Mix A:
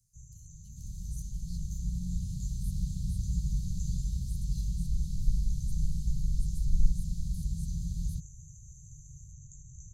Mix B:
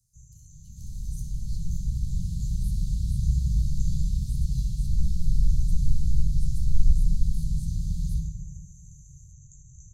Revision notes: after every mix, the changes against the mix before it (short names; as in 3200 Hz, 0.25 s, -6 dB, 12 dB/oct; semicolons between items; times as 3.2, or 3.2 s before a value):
reverb: on, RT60 1.1 s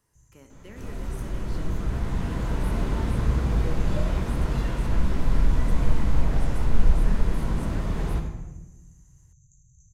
first sound -8.5 dB; master: remove Chebyshev band-stop 170–4200 Hz, order 4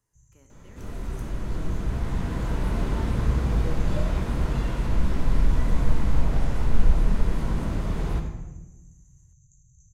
speech -8.0 dB